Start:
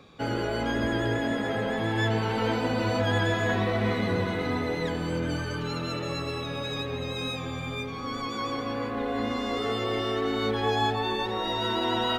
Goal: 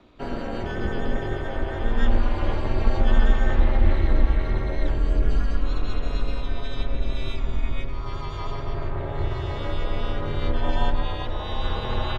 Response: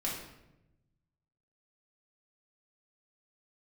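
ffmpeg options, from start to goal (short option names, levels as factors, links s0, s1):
-filter_complex "[0:a]acrossover=split=210|910[s0][s1][s2];[s0]acontrast=28[s3];[s3][s1][s2]amix=inputs=3:normalize=0,asplit=2[s4][s5];[s5]asetrate=37084,aresample=44100,atempo=1.18921,volume=0.501[s6];[s4][s6]amix=inputs=2:normalize=0,aemphasis=mode=reproduction:type=cd,aeval=exprs='val(0)*sin(2*PI*130*n/s)':c=same,asubboost=boost=9:cutoff=69,volume=0.891"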